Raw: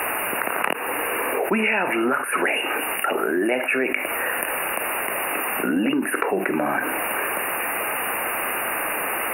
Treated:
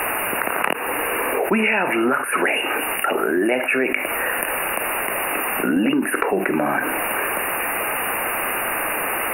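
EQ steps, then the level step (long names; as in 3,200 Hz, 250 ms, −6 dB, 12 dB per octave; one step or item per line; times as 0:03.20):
low-shelf EQ 89 Hz +8 dB
+2.0 dB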